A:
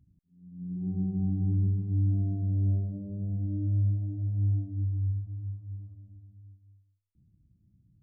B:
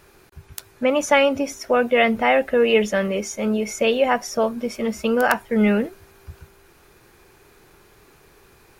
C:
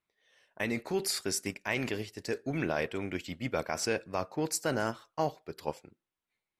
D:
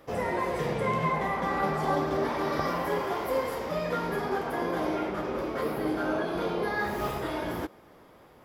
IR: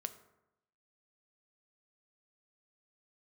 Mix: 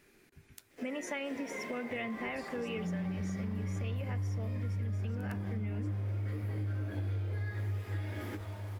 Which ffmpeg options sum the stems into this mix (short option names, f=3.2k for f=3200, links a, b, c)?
-filter_complex "[0:a]lowshelf=f=440:g=10,adelay=2250,volume=0dB,asplit=2[a][b];[b]volume=-19.5dB[c];[1:a]equalizer=f=73:w=1.5:g=-5.5,volume=-17dB,asplit=2[d][e];[e]volume=-5dB[f];[2:a]aemphasis=mode=reproduction:type=bsi,adelay=1300,volume=-15.5dB[g];[3:a]highpass=350,acrusher=bits=8:mix=0:aa=0.000001,adelay=700,volume=-10dB,asplit=2[h][i];[i]volume=-7.5dB[j];[a][g]amix=inputs=2:normalize=0,alimiter=limit=-21.5dB:level=0:latency=1:release=228,volume=0dB[k];[d][h]amix=inputs=2:normalize=0,equalizer=f=250:t=o:w=1:g=12,equalizer=f=1k:t=o:w=1:g=-11,equalizer=f=2k:t=o:w=1:g=11,equalizer=f=8k:t=o:w=1:g=4,alimiter=level_in=5dB:limit=-24dB:level=0:latency=1:release=458,volume=-5dB,volume=0dB[l];[4:a]atrim=start_sample=2205[m];[f][m]afir=irnorm=-1:irlink=0[n];[c][j]amix=inputs=2:normalize=0,aecho=0:1:469:1[o];[k][l][n][o]amix=inputs=4:normalize=0,acompressor=threshold=-34dB:ratio=5"